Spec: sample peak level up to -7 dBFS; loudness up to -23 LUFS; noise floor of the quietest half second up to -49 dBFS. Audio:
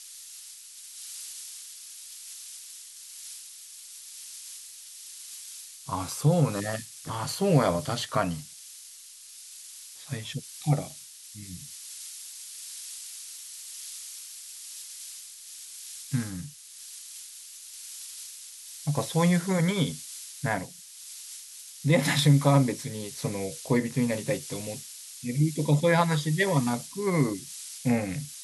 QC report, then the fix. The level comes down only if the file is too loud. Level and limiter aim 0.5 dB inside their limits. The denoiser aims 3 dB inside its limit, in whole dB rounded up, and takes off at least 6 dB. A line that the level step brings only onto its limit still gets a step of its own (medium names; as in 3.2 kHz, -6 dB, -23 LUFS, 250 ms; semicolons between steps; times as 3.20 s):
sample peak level -8.5 dBFS: pass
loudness -29.0 LUFS: pass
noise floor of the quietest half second -48 dBFS: fail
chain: noise reduction 6 dB, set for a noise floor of -48 dBFS